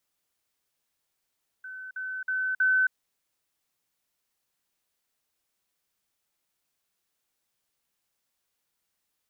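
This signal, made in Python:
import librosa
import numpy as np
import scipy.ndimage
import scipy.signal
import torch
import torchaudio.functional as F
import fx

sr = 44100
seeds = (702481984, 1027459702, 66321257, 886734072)

y = fx.level_ladder(sr, hz=1520.0, from_db=-37.5, step_db=6.0, steps=4, dwell_s=0.27, gap_s=0.05)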